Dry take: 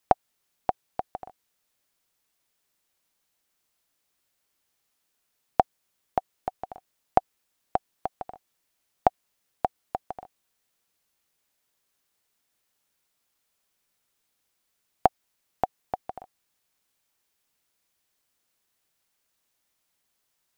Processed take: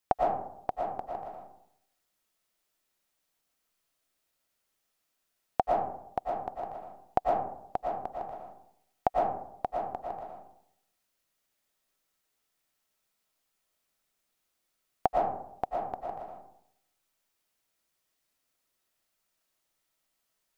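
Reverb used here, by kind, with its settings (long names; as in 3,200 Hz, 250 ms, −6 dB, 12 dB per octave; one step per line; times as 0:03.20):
comb and all-pass reverb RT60 0.75 s, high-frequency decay 0.4×, pre-delay 75 ms, DRR −2.5 dB
level −6.5 dB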